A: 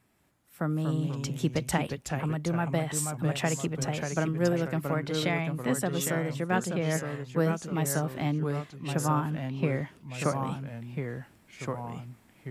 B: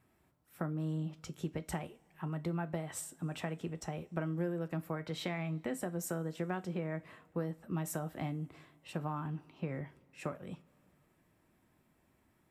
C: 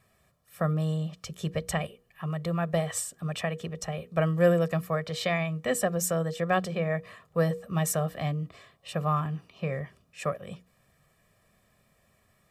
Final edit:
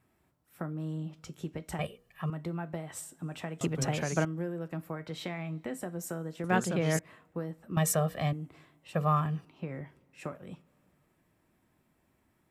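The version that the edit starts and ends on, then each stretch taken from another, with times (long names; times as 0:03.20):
B
0:01.79–0:02.30: punch in from C
0:03.61–0:04.25: punch in from A
0:06.44–0:06.99: punch in from A
0:07.77–0:08.33: punch in from C
0:08.95–0:09.45: punch in from C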